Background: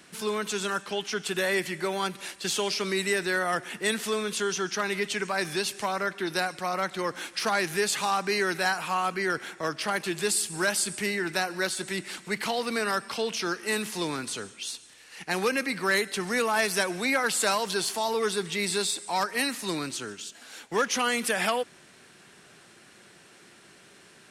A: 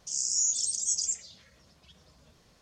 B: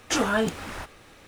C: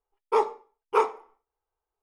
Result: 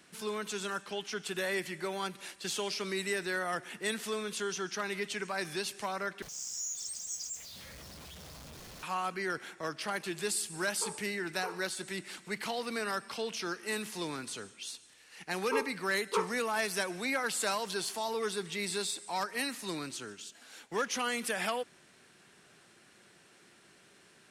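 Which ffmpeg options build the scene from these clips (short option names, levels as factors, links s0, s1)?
-filter_complex "[3:a]asplit=2[s0][s1];[0:a]volume=0.447[s2];[1:a]aeval=exprs='val(0)+0.5*0.0299*sgn(val(0))':c=same[s3];[s0]alimiter=limit=0.158:level=0:latency=1:release=71[s4];[s1]asuperstop=centerf=730:order=4:qfactor=2.4[s5];[s2]asplit=2[s6][s7];[s6]atrim=end=6.224[s8];[s3]atrim=end=2.61,asetpts=PTS-STARTPTS,volume=0.224[s9];[s7]atrim=start=8.826[s10];[s4]atrim=end=2.02,asetpts=PTS-STARTPTS,volume=0.15,afade=t=in:d=0.004:c=hsin,afade=t=out:st=2.016:d=0.004:c=hsin,adelay=10490[s11];[s5]atrim=end=2.02,asetpts=PTS-STARTPTS,volume=0.355,afade=t=in:d=0.004:c=hsin,afade=t=out:st=2.016:d=0.004:c=hsin,adelay=15190[s12];[s8][s9]acrossfade=d=0.004:c1=hsin:c2=hsin[s13];[s13][s10]acrossfade=d=0.004:c1=hsin:c2=hsin[s14];[s14][s11][s12]amix=inputs=3:normalize=0"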